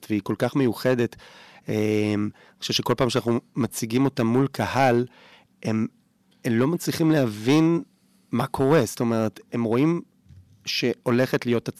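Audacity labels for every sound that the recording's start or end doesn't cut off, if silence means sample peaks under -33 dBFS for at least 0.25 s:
1.680000	2.300000	sound
2.620000	5.060000	sound
5.630000	5.860000	sound
6.450000	7.830000	sound
8.330000	10.000000	sound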